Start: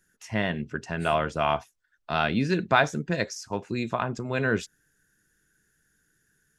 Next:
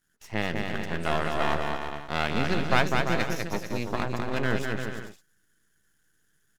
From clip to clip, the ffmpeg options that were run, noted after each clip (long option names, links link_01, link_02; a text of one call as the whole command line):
ffmpeg -i in.wav -af "aeval=exprs='max(val(0),0)':channel_layout=same,aecho=1:1:200|340|438|506.6|554.6:0.631|0.398|0.251|0.158|0.1" out.wav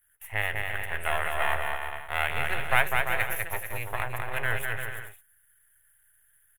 ffmpeg -i in.wav -af "firequalizer=gain_entry='entry(110,0);entry(180,-23);entry(270,-22);entry(410,-9);entry(770,0);entry(1200,-2);entry(1900,6);entry(3300,-2);entry(4800,-24);entry(10000,14)':delay=0.05:min_phase=1" out.wav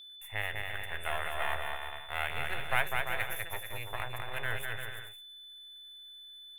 ffmpeg -i in.wav -af "aeval=exprs='val(0)+0.00891*sin(2*PI*3500*n/s)':channel_layout=same,volume=-6.5dB" out.wav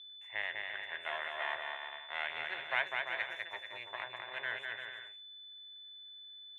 ffmpeg -i in.wav -af "highpass=460,equalizer=frequency=470:width_type=q:width=4:gain=-9,equalizer=frequency=770:width_type=q:width=4:gain=-7,equalizer=frequency=1300:width_type=q:width=4:gain=-9,equalizer=frequency=2600:width_type=q:width=4:gain=-6,equalizer=frequency=4800:width_type=q:width=4:gain=-9,lowpass=frequency=4900:width=0.5412,lowpass=frequency=4900:width=1.3066,volume=1dB" out.wav